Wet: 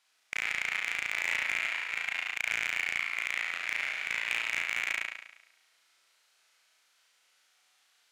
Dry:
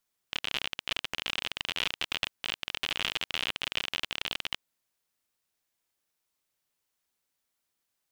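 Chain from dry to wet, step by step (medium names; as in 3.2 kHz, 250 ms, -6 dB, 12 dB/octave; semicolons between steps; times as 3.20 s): chunks repeated in reverse 308 ms, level -2 dB; band-pass filter 2.5 kHz, Q 0.74; in parallel at -3 dB: saturation -24 dBFS, distortion -11 dB; on the sum: formant shift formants -5 st; compressor with a negative ratio -36 dBFS, ratio -0.5; treble shelf 2.9 kHz +7 dB; on a send: flutter echo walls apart 6 m, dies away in 0.86 s; on the sum: peak limiter -12 dBFS, peak gain reduction 5 dB; hard clipper -19 dBFS, distortion -14 dB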